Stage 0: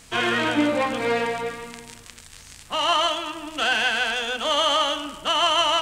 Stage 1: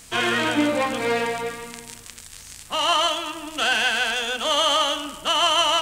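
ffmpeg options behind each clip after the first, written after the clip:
-af "highshelf=f=6800:g=9"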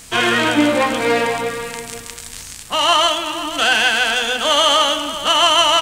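-af "areverse,acompressor=mode=upward:threshold=0.0282:ratio=2.5,areverse,aecho=1:1:495:0.224,volume=2"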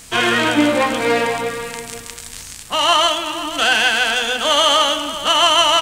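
-af "aeval=exprs='0.891*(cos(1*acos(clip(val(0)/0.891,-1,1)))-cos(1*PI/2))+0.00631*(cos(7*acos(clip(val(0)/0.891,-1,1)))-cos(7*PI/2))':c=same"

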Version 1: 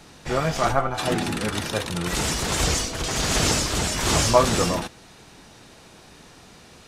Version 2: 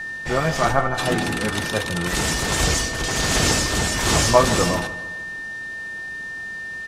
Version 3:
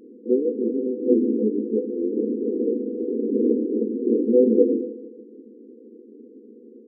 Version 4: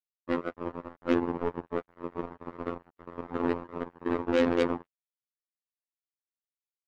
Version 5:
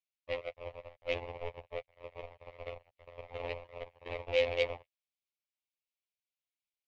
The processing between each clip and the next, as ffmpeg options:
-filter_complex "[0:a]aeval=exprs='val(0)+0.0316*sin(2*PI*1800*n/s)':c=same,asplit=2[s0][s1];[s1]adelay=153,lowpass=f=4100:p=1,volume=0.188,asplit=2[s2][s3];[s3]adelay=153,lowpass=f=4100:p=1,volume=0.5,asplit=2[s4][s5];[s5]adelay=153,lowpass=f=4100:p=1,volume=0.5,asplit=2[s6][s7];[s7]adelay=153,lowpass=f=4100:p=1,volume=0.5,asplit=2[s8][s9];[s9]adelay=153,lowpass=f=4100:p=1,volume=0.5[s10];[s0][s2][s4][s6][s8][s10]amix=inputs=6:normalize=0,volume=1.26"
-af "afftfilt=real='re*between(b*sr/4096,210,510)':imag='im*between(b*sr/4096,210,510)':win_size=4096:overlap=0.75,volume=2.24"
-af "acrusher=bits=2:mix=0:aa=0.5,afftfilt=real='hypot(re,im)*cos(PI*b)':imag='0':win_size=2048:overlap=0.75,volume=0.562"
-af "firequalizer=gain_entry='entry(120,0);entry(180,-23);entry(320,-23);entry(540,4);entry(930,-8);entry(1500,-17);entry(2200,9);entry(8100,-7)':delay=0.05:min_phase=1,volume=0.668"

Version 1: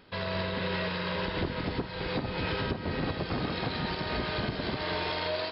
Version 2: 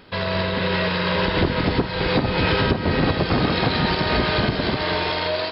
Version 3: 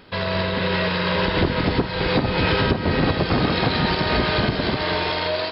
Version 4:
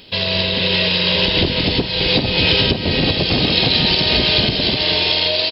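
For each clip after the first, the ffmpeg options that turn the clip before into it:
-af "dynaudnorm=f=230:g=9:m=1.41,volume=2.82"
-af anull
-af "firequalizer=gain_entry='entry(600,0);entry(1300,-10);entry(2800,11)':delay=0.05:min_phase=1,volume=1.19"

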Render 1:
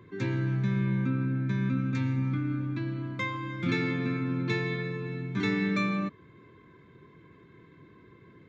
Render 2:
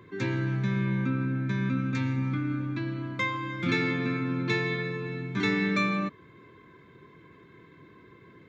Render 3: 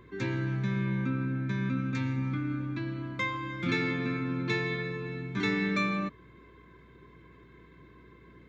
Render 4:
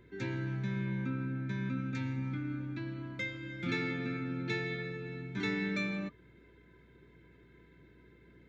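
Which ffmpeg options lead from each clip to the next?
-af "lowshelf=f=300:g=-5.5,volume=1.58"
-af "aeval=exprs='val(0)+0.00158*(sin(2*PI*60*n/s)+sin(2*PI*2*60*n/s)/2+sin(2*PI*3*60*n/s)/3+sin(2*PI*4*60*n/s)/4+sin(2*PI*5*60*n/s)/5)':c=same,volume=0.75"
-af "asuperstop=centerf=1100:order=12:qfactor=5.8,volume=0.562"

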